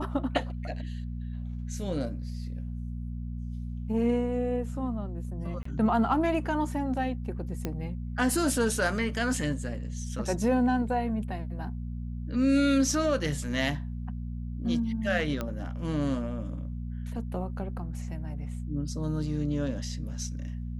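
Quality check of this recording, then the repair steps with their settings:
hum 60 Hz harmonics 4 -35 dBFS
5.63–5.65 gap 24 ms
7.65 pop -17 dBFS
15.41 pop -18 dBFS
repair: de-click; de-hum 60 Hz, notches 4; interpolate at 5.63, 24 ms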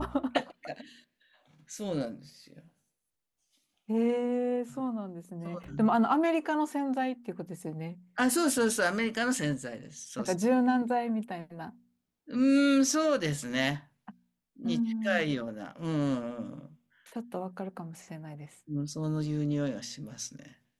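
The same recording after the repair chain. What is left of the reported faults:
none

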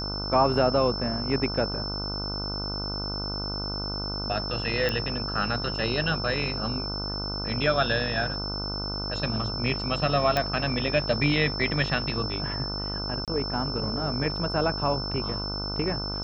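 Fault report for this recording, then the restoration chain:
buzz 50 Hz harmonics 30 -34 dBFS
tone 5300 Hz -32 dBFS
4.89 pop -13 dBFS
10.37 pop -10 dBFS
13.25–13.28 gap 27 ms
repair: de-click; de-hum 50 Hz, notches 30; notch 5300 Hz, Q 30; interpolate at 13.25, 27 ms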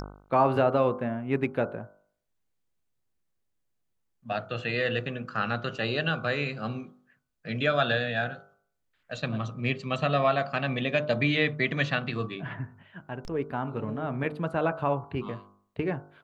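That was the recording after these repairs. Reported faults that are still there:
none

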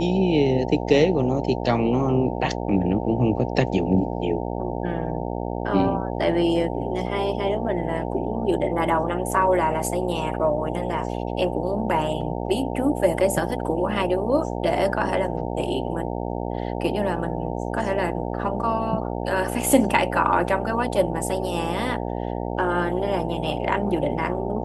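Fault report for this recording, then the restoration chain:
buzz 60 Hz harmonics 15 -28 dBFS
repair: de-hum 60 Hz, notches 15

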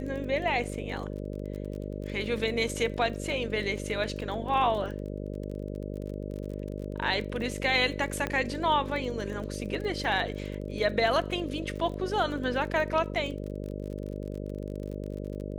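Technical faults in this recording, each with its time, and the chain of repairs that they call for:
buzz 50 Hz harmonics 12 -36 dBFS
crackle 31/s -36 dBFS
8.27 pop -16 dBFS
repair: de-click; de-hum 50 Hz, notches 12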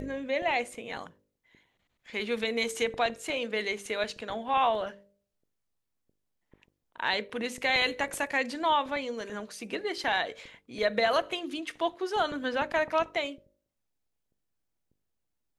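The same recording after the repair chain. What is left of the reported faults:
8.27 pop

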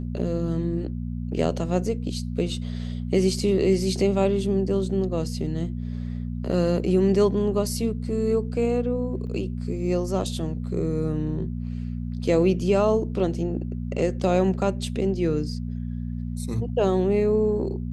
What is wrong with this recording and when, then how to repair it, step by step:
hum 60 Hz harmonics 4 -30 dBFS
9.27–9.28 gap 5.2 ms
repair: de-hum 60 Hz, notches 4; interpolate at 9.27, 5.2 ms

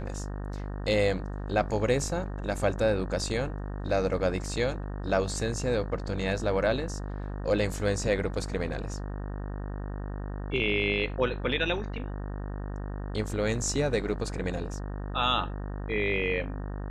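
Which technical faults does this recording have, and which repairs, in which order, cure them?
buzz 50 Hz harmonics 37 -35 dBFS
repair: de-hum 50 Hz, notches 37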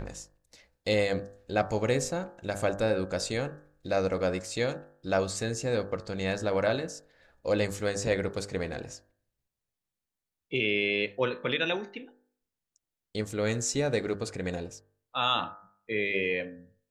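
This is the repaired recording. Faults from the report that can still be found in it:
none

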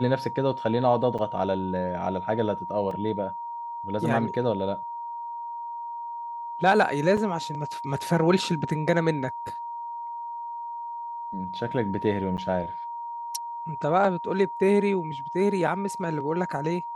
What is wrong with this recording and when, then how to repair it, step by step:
tone 940 Hz -32 dBFS
1.18–1.19 gap 6.5 ms
2.91 gap 2.8 ms
7.17 gap 4.8 ms
12.37–12.38 gap 9.2 ms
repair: notch 940 Hz, Q 30; interpolate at 1.18, 6.5 ms; interpolate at 2.91, 2.8 ms; interpolate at 7.17, 4.8 ms; interpolate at 12.37, 9.2 ms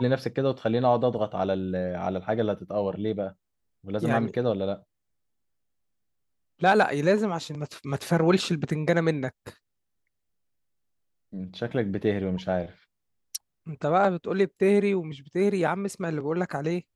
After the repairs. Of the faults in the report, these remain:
none

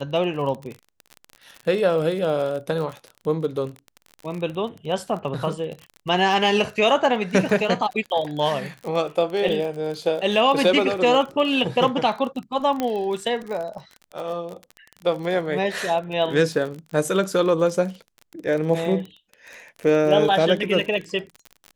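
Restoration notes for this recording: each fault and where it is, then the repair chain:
crackle 33/s -29 dBFS
12.8 pop -11 dBFS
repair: de-click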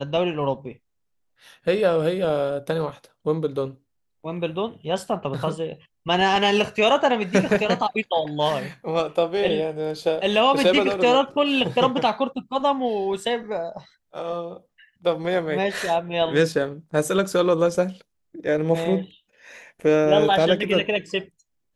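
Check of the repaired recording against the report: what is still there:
none

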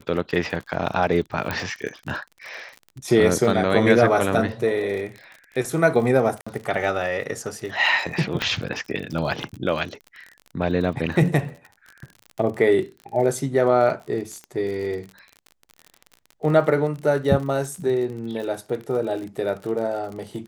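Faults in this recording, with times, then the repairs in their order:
crackle 44/s -31 dBFS
1.51 pop -11 dBFS
6.41–6.46 gap 55 ms
8.42 pop -10 dBFS
14.44 pop -25 dBFS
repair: de-click; interpolate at 6.41, 55 ms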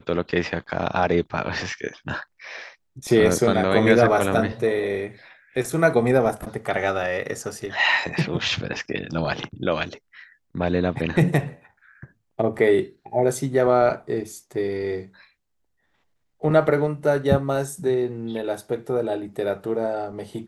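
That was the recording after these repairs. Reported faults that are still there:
none

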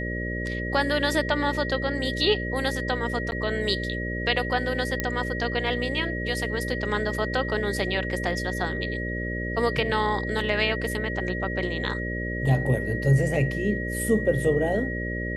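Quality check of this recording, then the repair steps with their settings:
buzz 60 Hz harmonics 10 -31 dBFS
tone 1900 Hz -32 dBFS
3.31–3.32 gap 9.9 ms
5 pop -10 dBFS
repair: de-click; notch 1900 Hz, Q 30; de-hum 60 Hz, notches 10; interpolate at 3.31, 9.9 ms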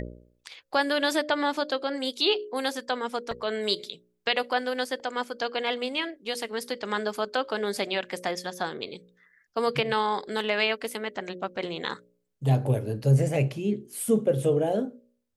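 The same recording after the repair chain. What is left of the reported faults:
none

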